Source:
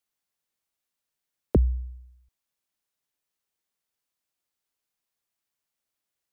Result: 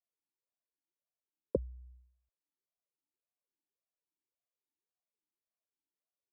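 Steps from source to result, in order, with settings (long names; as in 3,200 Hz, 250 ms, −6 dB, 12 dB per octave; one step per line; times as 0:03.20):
spectral tilt −4.5 dB per octave
formant filter swept between two vowels a-u 1.8 Hz
level −3.5 dB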